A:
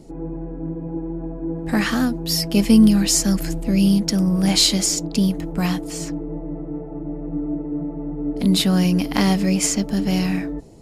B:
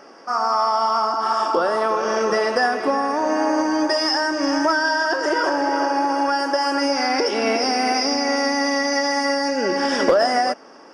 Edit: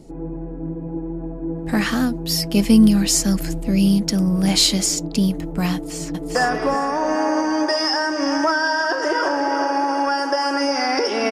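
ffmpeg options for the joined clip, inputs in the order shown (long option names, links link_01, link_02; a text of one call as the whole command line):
ffmpeg -i cue0.wav -i cue1.wav -filter_complex "[0:a]apad=whole_dur=11.31,atrim=end=11.31,atrim=end=6.352[link_01];[1:a]atrim=start=2.558:end=7.52[link_02];[link_01][link_02]acrossfade=duration=0.004:curve1=hsin:curve2=hsin,asplit=2[link_03][link_04];[link_04]afade=type=in:start_time=5.74:duration=0.01,afade=type=out:start_time=6.35:duration=0.01,aecho=0:1:400|800|1200|1600:0.749894|0.224968|0.0674905|0.0202471[link_05];[link_03][link_05]amix=inputs=2:normalize=0" out.wav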